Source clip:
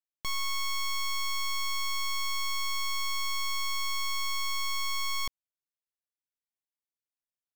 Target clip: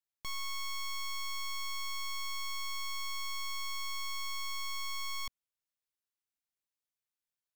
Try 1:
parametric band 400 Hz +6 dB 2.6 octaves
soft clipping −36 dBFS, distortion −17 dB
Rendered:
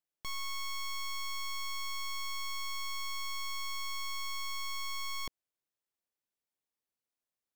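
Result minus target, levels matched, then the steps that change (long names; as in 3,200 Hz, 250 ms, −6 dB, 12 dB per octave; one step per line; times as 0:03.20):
500 Hz band +4.0 dB
change: parametric band 400 Hz −4 dB 2.6 octaves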